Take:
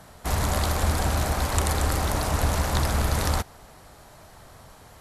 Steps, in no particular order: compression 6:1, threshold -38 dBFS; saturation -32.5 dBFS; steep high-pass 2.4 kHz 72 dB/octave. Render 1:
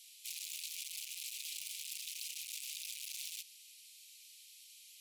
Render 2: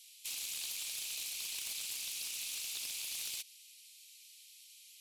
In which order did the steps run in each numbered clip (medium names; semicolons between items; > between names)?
saturation > steep high-pass > compression; steep high-pass > saturation > compression